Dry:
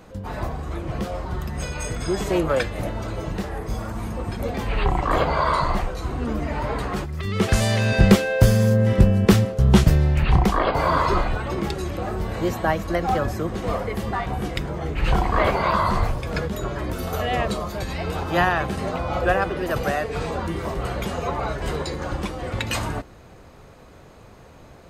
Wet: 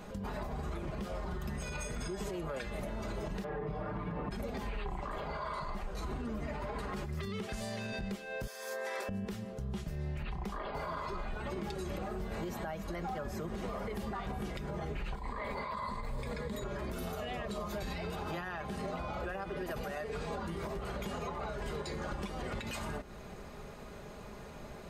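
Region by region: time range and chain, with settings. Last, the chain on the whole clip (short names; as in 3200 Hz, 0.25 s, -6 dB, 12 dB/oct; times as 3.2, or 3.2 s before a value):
3.44–4.31 HPF 66 Hz + air absorption 430 m + comb 6.7 ms, depth 94%
8.47–9.09 Bessel high-pass 740 Hz, order 6 + notch 2900 Hz, Q 6.5
15.15–16.64 ripple EQ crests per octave 0.99, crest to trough 9 dB + negative-ratio compressor -25 dBFS
whole clip: comb 4.9 ms, depth 51%; compressor 12:1, threshold -31 dBFS; limiter -28.5 dBFS; gain -1.5 dB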